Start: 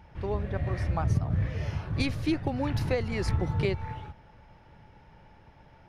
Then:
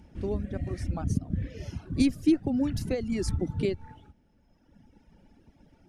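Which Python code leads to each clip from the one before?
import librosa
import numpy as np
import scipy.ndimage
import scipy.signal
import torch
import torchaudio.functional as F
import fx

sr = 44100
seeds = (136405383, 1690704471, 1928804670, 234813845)

y = fx.dereverb_blind(x, sr, rt60_s=1.9)
y = fx.graphic_eq(y, sr, hz=(125, 250, 500, 1000, 2000, 4000, 8000), db=(-7, 11, -3, -11, -6, -4, 8))
y = F.gain(torch.from_numpy(y), 1.5).numpy()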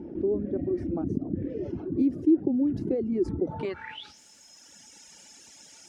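y = fx.filter_sweep_bandpass(x, sr, from_hz=350.0, to_hz=7100.0, start_s=3.37, end_s=4.2, q=5.0)
y = fx.env_flatten(y, sr, amount_pct=50)
y = F.gain(torch.from_numpy(y), 4.0).numpy()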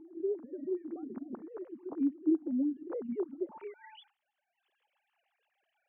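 y = fx.sine_speech(x, sr)
y = F.gain(torch.from_numpy(y), -8.0).numpy()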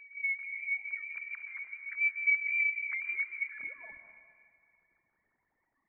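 y = fx.rev_plate(x, sr, seeds[0], rt60_s=2.2, hf_ratio=0.9, predelay_ms=110, drr_db=7.0)
y = fx.freq_invert(y, sr, carrier_hz=2600)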